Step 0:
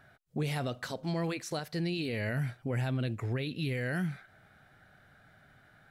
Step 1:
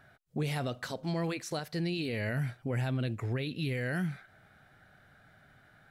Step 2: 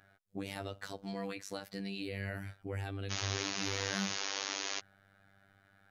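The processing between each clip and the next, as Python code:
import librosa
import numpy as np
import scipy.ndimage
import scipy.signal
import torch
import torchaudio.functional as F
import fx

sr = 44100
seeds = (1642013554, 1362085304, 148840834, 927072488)

y1 = x
y2 = fx.spec_paint(y1, sr, seeds[0], shape='noise', start_s=3.1, length_s=1.7, low_hz=230.0, high_hz=6800.0, level_db=-33.0)
y2 = fx.robotise(y2, sr, hz=98.3)
y2 = F.gain(torch.from_numpy(y2), -3.5).numpy()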